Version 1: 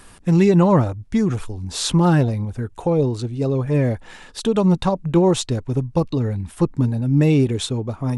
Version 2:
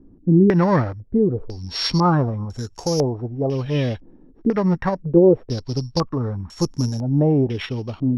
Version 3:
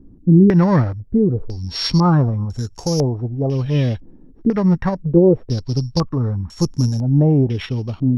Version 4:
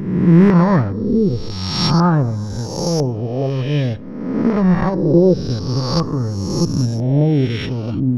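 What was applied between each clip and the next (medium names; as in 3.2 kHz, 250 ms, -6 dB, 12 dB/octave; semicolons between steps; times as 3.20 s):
sorted samples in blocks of 8 samples; step-sequenced low-pass 2 Hz 300–7200 Hz; trim -3 dB
tone controls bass +7 dB, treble +3 dB; trim -1 dB
reverse spectral sustain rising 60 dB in 1.21 s; on a send at -18.5 dB: reverberation RT60 1.2 s, pre-delay 3 ms; on the sum: trim -1 dB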